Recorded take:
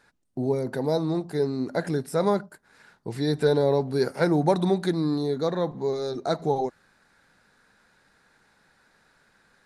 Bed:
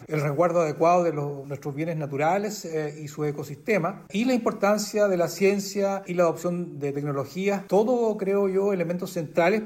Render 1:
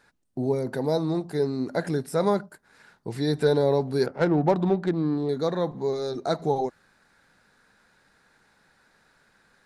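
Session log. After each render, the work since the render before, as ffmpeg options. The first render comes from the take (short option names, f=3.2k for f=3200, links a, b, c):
-filter_complex "[0:a]asettb=1/sr,asplit=3[a][b][c];[a]atrim=end=4.064[d];[b]atrim=start=4.06:end=5.29,asetpts=PTS-STARTPTS,afade=t=in:d=0.004:c=qsin,afade=t=out:st=1.226:d=0.004:c=qsin,adynamicsmooth=sensitivity=1.5:basefreq=1.3k[e];[c]atrim=start=5.286[f];[d][e]acrossfade=d=0.004:c1=hsin:c2=qsin[g];[g][f]acrossfade=d=0.004:c1=qsin:c2=hsin"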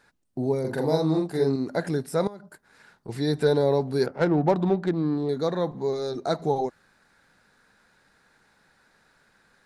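-filter_complex "[0:a]asettb=1/sr,asplit=3[a][b][c];[a]atrim=end=0.604[d];[b]atrim=start=0.6:end=1.56,asetpts=PTS-STARTPTS,afade=t=in:d=0.004:c=qsin,afade=t=out:st=0.956:d=0.004:c=qsin,asplit=2[e][f];[f]adelay=44,volume=-2dB[g];[e][g]amix=inputs=2:normalize=0,atrim=end_sample=42336[h];[c]atrim=start=1.556[i];[d][h]acrossfade=d=0.004:c1=hsin:c2=qsin[j];[j][i]acrossfade=d=0.004:c1=qsin:c2=hsin,asettb=1/sr,asplit=3[k][l][m];[k]atrim=end=2.274[n];[l]atrim=start=2.27:end=3.09,asetpts=PTS-STARTPTS,afade=t=in:d=0.004:c=qsin,afade=t=out:st=0.816:d=0.004:c=qsin,acompressor=threshold=-37dB:ratio=12:attack=3.2:release=140:knee=1:detection=peak[o];[m]atrim=start=3.086[p];[n][o]acrossfade=d=0.004:c1=hsin:c2=qsin[q];[q][p]acrossfade=d=0.004:c1=qsin:c2=hsin"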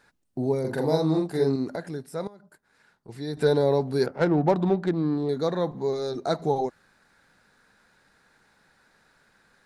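-filter_complex "[0:a]asplit=3[a][b][c];[a]atrim=end=1.762[d];[b]atrim=start=1.758:end=3.372,asetpts=PTS-STARTPTS,volume=-7.5dB[e];[c]atrim=start=3.368[f];[d][e]acrossfade=d=0.004:c1=hsin:c2=hsin[g];[g][f]acrossfade=d=0.004:c1=hsin:c2=hsin"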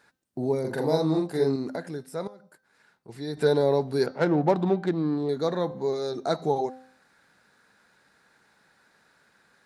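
-af "highpass=f=130:p=1,bandreject=f=259.1:t=h:w=4,bandreject=f=518.2:t=h:w=4,bandreject=f=777.3:t=h:w=4,bandreject=f=1.0364k:t=h:w=4,bandreject=f=1.2955k:t=h:w=4,bandreject=f=1.5546k:t=h:w=4,bandreject=f=1.8137k:t=h:w=4,bandreject=f=2.0728k:t=h:w=4,bandreject=f=2.3319k:t=h:w=4,bandreject=f=2.591k:t=h:w=4,bandreject=f=2.8501k:t=h:w=4,bandreject=f=3.1092k:t=h:w=4,bandreject=f=3.3683k:t=h:w=4,bandreject=f=3.6274k:t=h:w=4,bandreject=f=3.8865k:t=h:w=4,bandreject=f=4.1456k:t=h:w=4,bandreject=f=4.4047k:t=h:w=4,bandreject=f=4.6638k:t=h:w=4,bandreject=f=4.9229k:t=h:w=4,bandreject=f=5.182k:t=h:w=4,bandreject=f=5.4411k:t=h:w=4,bandreject=f=5.7002k:t=h:w=4,bandreject=f=5.9593k:t=h:w=4,bandreject=f=6.2184k:t=h:w=4,bandreject=f=6.4775k:t=h:w=4"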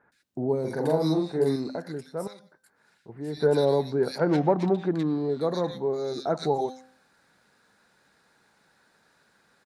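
-filter_complex "[0:a]acrossover=split=1800[a][b];[b]adelay=120[c];[a][c]amix=inputs=2:normalize=0"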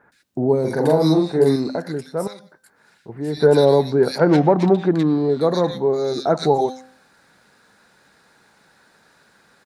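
-af "volume=8.5dB,alimiter=limit=-3dB:level=0:latency=1"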